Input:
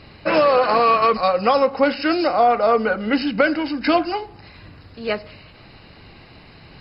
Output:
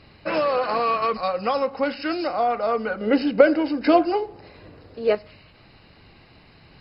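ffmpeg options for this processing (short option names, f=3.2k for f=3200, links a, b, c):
-filter_complex "[0:a]asettb=1/sr,asplit=3[a][b][c];[a]atrim=end=3.014[d];[b]atrim=start=3.01:end=5.15,asetpts=PTS-STARTPTS,afade=t=in:d=0.004:c=qsin,afade=t=out:st=2.136:d=0.004:c=qsin,equalizer=f=470:t=o:w=1.4:g=13[e];[c]atrim=start=5.146[f];[d][e]acrossfade=d=0.004:c1=hsin:c2=qsin[g];[g][f]acrossfade=d=0.004:c1=qsin:c2=hsin,volume=-6.5dB"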